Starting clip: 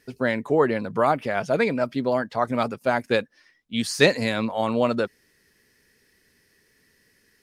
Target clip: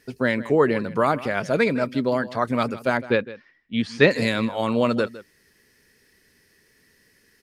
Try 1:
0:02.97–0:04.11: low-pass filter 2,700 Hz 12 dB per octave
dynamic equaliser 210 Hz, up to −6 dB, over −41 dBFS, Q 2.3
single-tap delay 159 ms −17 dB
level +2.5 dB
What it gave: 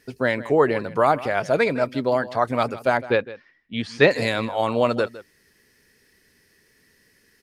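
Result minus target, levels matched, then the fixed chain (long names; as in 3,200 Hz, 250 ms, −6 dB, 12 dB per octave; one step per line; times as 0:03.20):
250 Hz band −4.0 dB
0:02.97–0:04.11: low-pass filter 2,700 Hz 12 dB per octave
dynamic equaliser 750 Hz, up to −6 dB, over −41 dBFS, Q 2.3
single-tap delay 159 ms −17 dB
level +2.5 dB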